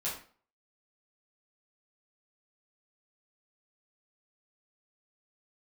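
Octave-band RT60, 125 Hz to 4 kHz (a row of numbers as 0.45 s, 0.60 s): 0.45 s, 0.45 s, 0.45 s, 0.45 s, 0.40 s, 0.35 s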